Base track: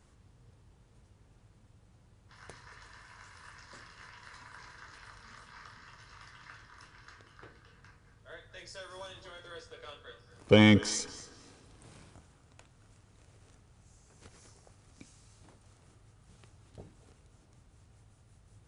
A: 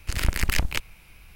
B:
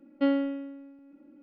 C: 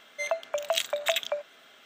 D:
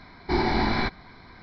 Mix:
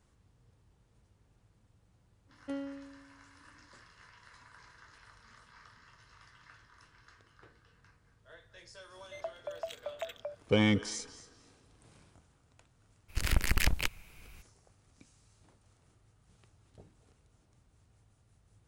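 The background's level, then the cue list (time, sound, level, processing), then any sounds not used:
base track −6 dB
0:02.27: mix in B −14 dB
0:08.93: mix in C −13.5 dB + tilt shelving filter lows +8.5 dB, about 920 Hz
0:13.08: mix in A −4.5 dB, fades 0.02 s
not used: D

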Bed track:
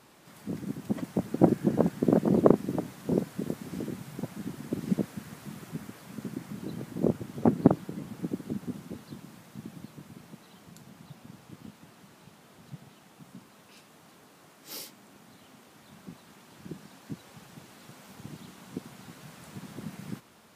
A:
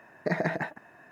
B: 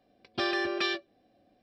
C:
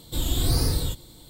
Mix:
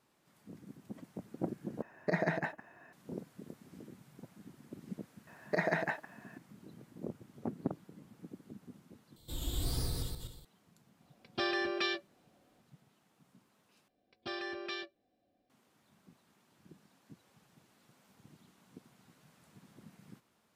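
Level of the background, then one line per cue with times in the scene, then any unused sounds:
bed track −16 dB
0:01.82: overwrite with A −4 dB
0:05.27: mix in A −1.5 dB + low-shelf EQ 300 Hz −8 dB
0:09.16: overwrite with C −14 dB + feedback delay that plays each chunk backwards 124 ms, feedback 43%, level −3 dB
0:11.00: mix in B −4 dB
0:13.88: overwrite with B −11 dB

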